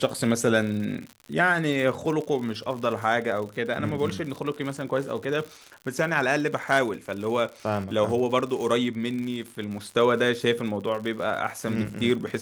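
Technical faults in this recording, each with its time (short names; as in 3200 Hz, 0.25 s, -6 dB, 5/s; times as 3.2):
crackle 110/s -33 dBFS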